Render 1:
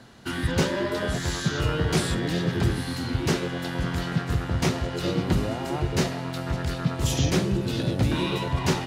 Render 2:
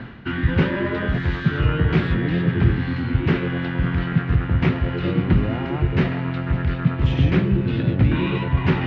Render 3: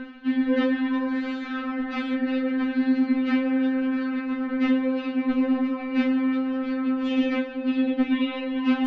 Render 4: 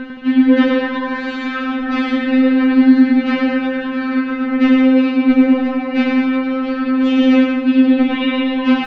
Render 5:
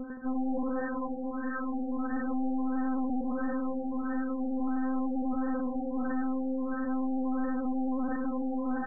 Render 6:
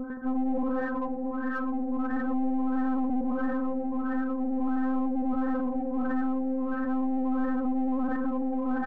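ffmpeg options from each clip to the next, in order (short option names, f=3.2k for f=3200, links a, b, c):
-af "lowpass=f=2.5k:w=0.5412,lowpass=f=2.5k:w=1.3066,equalizer=f=680:t=o:w=1.8:g=-9.5,areverse,acompressor=mode=upward:threshold=-26dB:ratio=2.5,areverse,volume=7.5dB"
-af "afftfilt=real='re*3.46*eq(mod(b,12),0)':imag='im*3.46*eq(mod(b,12),0)':win_size=2048:overlap=0.75"
-af "aecho=1:1:100|170|219|253.3|277.3:0.631|0.398|0.251|0.158|0.1,volume=8.5dB"
-af "aeval=exprs='(tanh(14.1*val(0)+0.65)-tanh(0.65))/14.1':c=same,afftfilt=real='re*lt(b*sr/1024,900*pow(1900/900,0.5+0.5*sin(2*PI*1.5*pts/sr)))':imag='im*lt(b*sr/1024,900*pow(1900/900,0.5+0.5*sin(2*PI*1.5*pts/sr)))':win_size=1024:overlap=0.75,volume=-6.5dB"
-filter_complex "[0:a]asplit=2[a][b];[b]asoftclip=type=tanh:threshold=-37.5dB,volume=-9dB[c];[a][c]amix=inputs=2:normalize=0,aecho=1:1:116:0.0668,volume=2dB"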